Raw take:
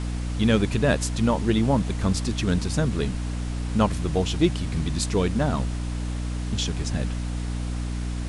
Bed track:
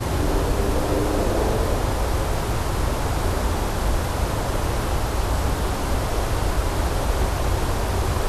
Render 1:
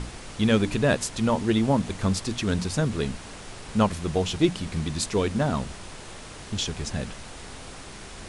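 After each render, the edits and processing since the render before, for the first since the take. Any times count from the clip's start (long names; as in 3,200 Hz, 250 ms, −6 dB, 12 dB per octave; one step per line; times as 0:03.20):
mains-hum notches 60/120/180/240/300 Hz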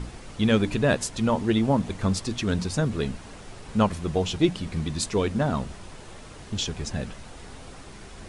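broadband denoise 6 dB, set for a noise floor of −42 dBFS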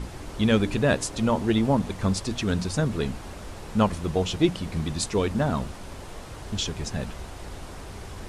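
mix in bed track −19 dB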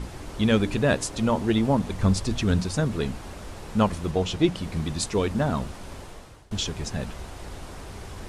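0:01.92–0:02.61: low-shelf EQ 130 Hz +8 dB
0:04.11–0:04.56: high-shelf EQ 10,000 Hz −6.5 dB
0:05.97–0:06.51: fade out, to −22.5 dB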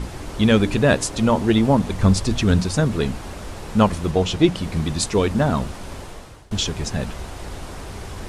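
level +5.5 dB
brickwall limiter −3 dBFS, peak gain reduction 1 dB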